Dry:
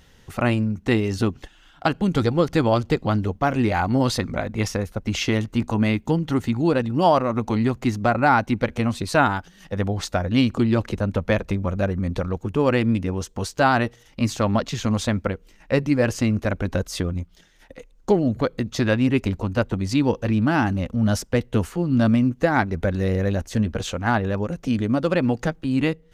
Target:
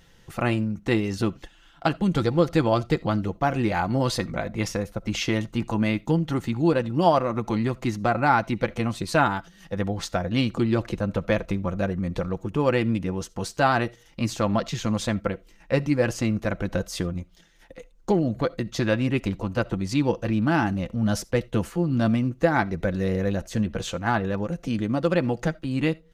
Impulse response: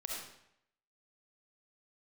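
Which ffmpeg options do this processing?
-filter_complex "[0:a]aecho=1:1:5.9:0.36,asplit=2[s0][s1];[1:a]atrim=start_sample=2205,atrim=end_sample=3969[s2];[s1][s2]afir=irnorm=-1:irlink=0,volume=0.119[s3];[s0][s3]amix=inputs=2:normalize=0,volume=0.668"

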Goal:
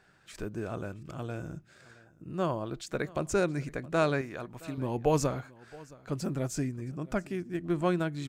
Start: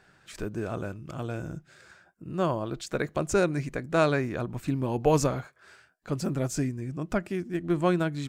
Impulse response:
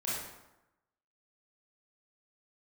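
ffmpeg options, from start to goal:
-filter_complex "[0:a]asettb=1/sr,asplit=3[s0][s1][s2];[s0]atrim=end=4.214[s3];[s1]atrim=start=4.21:end=4.78,asetpts=PTS-STARTPTS,afade=t=in:d=0.004:c=qsin,afade=t=out:st=0.566:d=0.004:c=qsin,lowshelf=f=390:g=-9.5[s4];[s2]atrim=start=4.776[s5];[s3][s4]acrossfade=d=0.004:c1=hsin:c2=qsin[s6];[s6][s5]acrossfade=d=0.004:c1=qsin:c2=hsin,aecho=1:1:670:0.0794,volume=0.668"

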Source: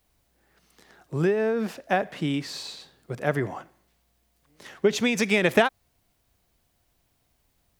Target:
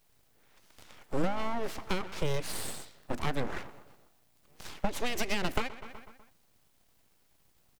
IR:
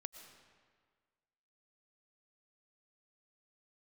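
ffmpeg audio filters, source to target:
-filter_complex "[0:a]asplit=2[s0][s1];[s1]adelay=124,lowpass=f=2600:p=1,volume=0.112,asplit=2[s2][s3];[s3]adelay=124,lowpass=f=2600:p=1,volume=0.55,asplit=2[s4][s5];[s5]adelay=124,lowpass=f=2600:p=1,volume=0.55,asplit=2[s6][s7];[s7]adelay=124,lowpass=f=2600:p=1,volume=0.55,asplit=2[s8][s9];[s9]adelay=124,lowpass=f=2600:p=1,volume=0.55[s10];[s0][s2][s4][s6][s8][s10]amix=inputs=6:normalize=0,acrossover=split=150[s11][s12];[s12]acompressor=threshold=0.0316:ratio=8[s13];[s11][s13]amix=inputs=2:normalize=0,aeval=exprs='abs(val(0))':c=same,volume=1.41"

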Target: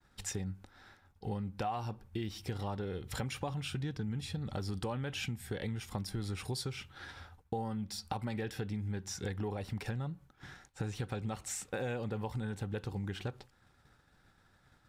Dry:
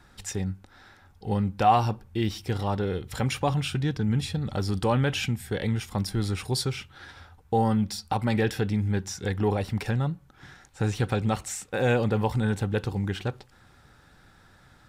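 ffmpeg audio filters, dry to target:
-af "acompressor=threshold=0.0251:ratio=6,agate=range=0.0224:threshold=0.00398:ratio=3:detection=peak,volume=0.75"

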